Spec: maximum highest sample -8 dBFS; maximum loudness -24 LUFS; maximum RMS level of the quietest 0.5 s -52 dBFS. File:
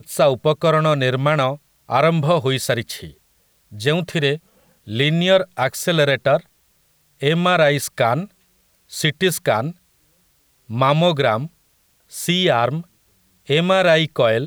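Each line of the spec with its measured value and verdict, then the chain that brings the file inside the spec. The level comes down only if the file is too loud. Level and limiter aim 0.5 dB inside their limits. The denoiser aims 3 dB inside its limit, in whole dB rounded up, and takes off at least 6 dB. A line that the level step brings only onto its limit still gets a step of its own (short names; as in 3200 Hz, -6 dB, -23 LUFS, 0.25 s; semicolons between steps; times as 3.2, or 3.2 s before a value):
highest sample -4.5 dBFS: fail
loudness -18.5 LUFS: fail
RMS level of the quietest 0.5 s -61 dBFS: OK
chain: gain -6 dB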